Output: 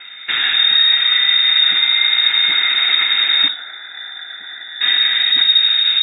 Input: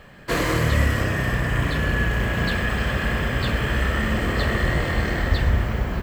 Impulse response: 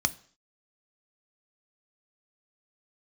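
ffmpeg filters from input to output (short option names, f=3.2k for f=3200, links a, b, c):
-filter_complex "[0:a]alimiter=limit=-18.5dB:level=0:latency=1:release=67,asettb=1/sr,asplit=3[a][b][c];[a]atrim=end=3.484[d];[b]atrim=start=3.48:end=4.81,asetpts=PTS-STARTPTS,afade=t=in:d=0.004:c=qsin,afade=t=out:st=1.326:d=0.004:c=qsin,asplit=3[e][f][g];[e]bandpass=f=270:t=q:w=8,volume=0dB[h];[f]bandpass=f=2.29k:t=q:w=8,volume=-6dB[i];[g]bandpass=f=3.01k:t=q:w=8,volume=-9dB[j];[h][i][j]amix=inputs=3:normalize=0[k];[c]atrim=start=4.806[l];[d][k]acrossfade=d=0.004:c1=hsin:c2=qsin[m];[m][l]acrossfade=d=0.004:c1=qsin:c2=hsin,asplit=2[n][o];[1:a]atrim=start_sample=2205[p];[o][p]afir=irnorm=-1:irlink=0,volume=-6dB[q];[n][q]amix=inputs=2:normalize=0,lowpass=f=3.2k:t=q:w=0.5098,lowpass=f=3.2k:t=q:w=0.6013,lowpass=f=3.2k:t=q:w=0.9,lowpass=f=3.2k:t=q:w=2.563,afreqshift=-3800,volume=7.5dB"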